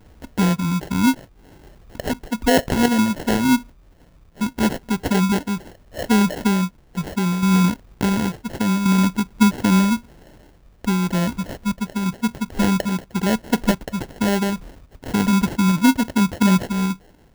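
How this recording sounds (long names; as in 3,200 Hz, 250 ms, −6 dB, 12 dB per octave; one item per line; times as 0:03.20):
a quantiser's noise floor 10 bits, dither none
sample-and-hold tremolo
phaser sweep stages 6, 2.8 Hz, lowest notch 700–3,800 Hz
aliases and images of a low sample rate 1,200 Hz, jitter 0%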